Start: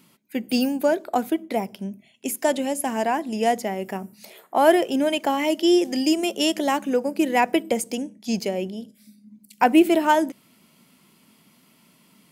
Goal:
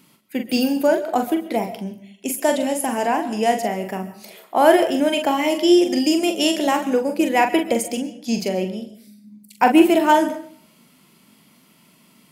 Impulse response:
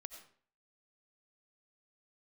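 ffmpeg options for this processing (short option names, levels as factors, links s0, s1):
-filter_complex "[0:a]asplit=2[s0][s1];[1:a]atrim=start_sample=2205,adelay=43[s2];[s1][s2]afir=irnorm=-1:irlink=0,volume=0.944[s3];[s0][s3]amix=inputs=2:normalize=0,volume=1.26"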